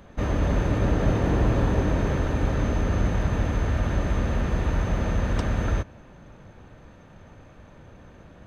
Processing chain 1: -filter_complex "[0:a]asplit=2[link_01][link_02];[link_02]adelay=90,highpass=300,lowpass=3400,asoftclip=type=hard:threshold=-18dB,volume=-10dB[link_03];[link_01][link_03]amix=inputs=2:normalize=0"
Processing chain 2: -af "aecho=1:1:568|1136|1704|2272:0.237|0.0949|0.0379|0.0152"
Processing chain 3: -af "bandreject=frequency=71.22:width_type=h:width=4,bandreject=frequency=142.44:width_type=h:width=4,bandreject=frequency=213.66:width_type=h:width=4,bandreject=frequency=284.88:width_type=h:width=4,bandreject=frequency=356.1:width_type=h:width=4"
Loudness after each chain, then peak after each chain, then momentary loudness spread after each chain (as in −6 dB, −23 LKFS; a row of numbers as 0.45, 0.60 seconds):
−25.0, −25.0, −25.5 LKFS; −9.0, −8.5, −9.5 dBFS; 3, 16, 4 LU